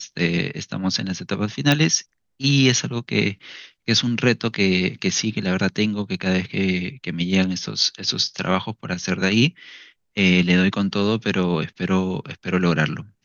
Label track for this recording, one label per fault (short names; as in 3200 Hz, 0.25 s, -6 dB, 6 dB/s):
1.720000	1.720000	pop -4 dBFS